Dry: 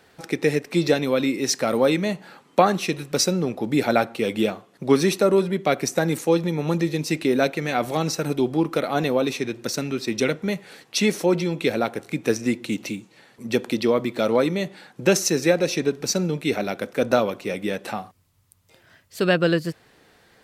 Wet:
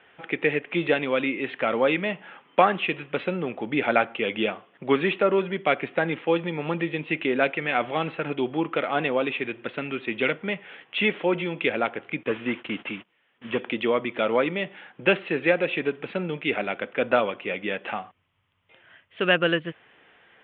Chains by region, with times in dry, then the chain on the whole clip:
0:12.23–0:13.60: linear delta modulator 32 kbit/s, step −36.5 dBFS + notch filter 790 Hz, Q 21 + noise gate −39 dBFS, range −26 dB
whole clip: Butterworth low-pass 3,300 Hz 96 dB per octave; spectral tilt +3 dB per octave

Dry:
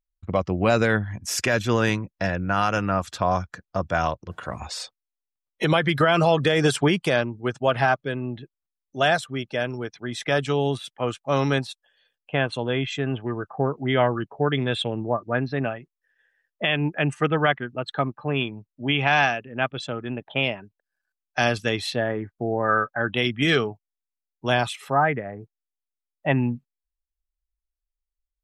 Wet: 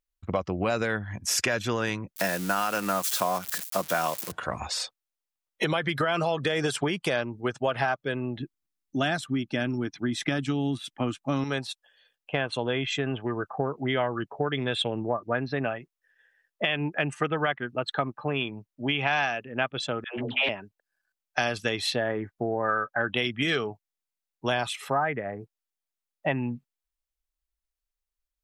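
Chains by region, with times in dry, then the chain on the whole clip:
0:02.16–0:04.32: spike at every zero crossing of −22 dBFS + high-pass filter 150 Hz 24 dB per octave
0:08.40–0:11.44: low shelf with overshoot 370 Hz +6.5 dB, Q 3 + notch filter 1,000 Hz, Q 26
0:20.04–0:20.49: hum removal 83.46 Hz, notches 5 + all-pass dispersion lows, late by 136 ms, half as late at 530 Hz + highs frequency-modulated by the lows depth 0.26 ms
whole clip: downward compressor, threshold −24 dBFS; low-shelf EQ 250 Hz −6 dB; level +2.5 dB

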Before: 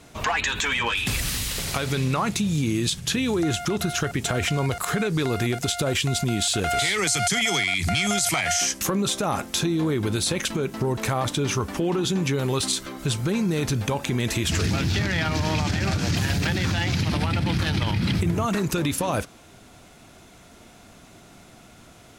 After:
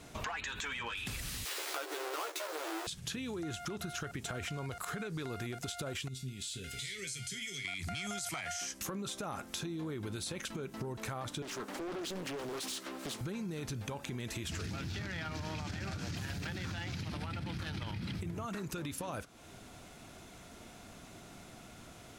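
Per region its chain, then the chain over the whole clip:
0:01.45–0:02.87: each half-wave held at its own peak + linear-phase brick-wall high-pass 300 Hz + double-tracking delay 13 ms −3 dB
0:06.08–0:07.65: Butterworth band-reject 890 Hz, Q 0.6 + parametric band 320 Hz −9 dB 0.34 octaves + tuned comb filter 130 Hz, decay 0.25 s, mix 80%
0:11.42–0:13.21: high-pass filter 220 Hz 24 dB per octave + hard clipping −27 dBFS + highs frequency-modulated by the lows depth 0.81 ms
whole clip: dynamic equaliser 1,400 Hz, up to +4 dB, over −40 dBFS, Q 3.6; downward compressor 4 to 1, threshold −36 dBFS; level −3.5 dB

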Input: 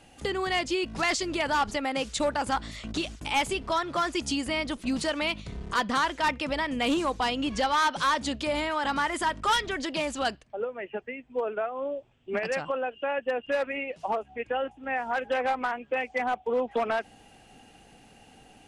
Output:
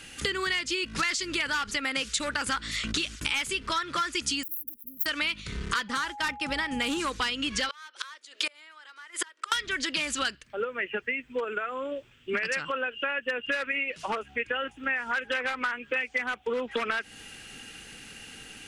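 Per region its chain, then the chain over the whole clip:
0:04.43–0:05.06: phase distortion by the signal itself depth 0.33 ms + inverse Chebyshev band-stop filter 930–7,600 Hz, stop band 50 dB + first-order pre-emphasis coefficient 0.97
0:05.88–0:06.99: downward expander −31 dBFS + parametric band 2,800 Hz −5.5 dB 2.5 octaves + steady tone 830 Hz −31 dBFS
0:07.69–0:09.52: Butterworth high-pass 350 Hz 48 dB per octave + gate with flip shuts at −22 dBFS, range −30 dB
0:11.44–0:11.92: parametric band 7,200 Hz +13.5 dB 0.23 octaves + downward compressor 3 to 1, threshold −31 dBFS
whole clip: drawn EQ curve 470 Hz 0 dB, 730 Hz −10 dB, 1,400 Hz +10 dB; downward compressor 6 to 1, threshold −30 dBFS; level +3.5 dB

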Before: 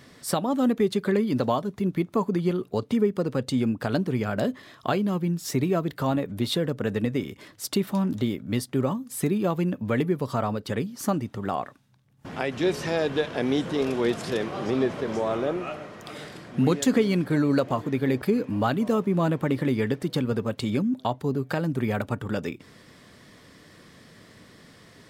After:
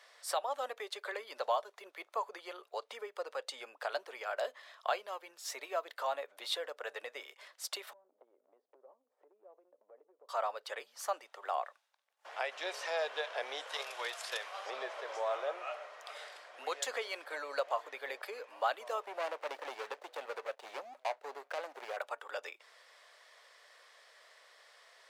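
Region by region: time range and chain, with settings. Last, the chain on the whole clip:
0:07.93–0:10.29: flat-topped band-pass 280 Hz, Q 0.83 + downward compressor 10 to 1, threshold −36 dBFS
0:13.67–0:14.66: high-pass filter 1,100 Hz 6 dB per octave + high-shelf EQ 11,000 Hz +11.5 dB + transient designer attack +11 dB, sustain +1 dB
0:19.06–0:21.97: running median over 41 samples + leveller curve on the samples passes 1
whole clip: Butterworth high-pass 560 Hz 36 dB per octave; high-shelf EQ 11,000 Hz −10 dB; level −5.5 dB

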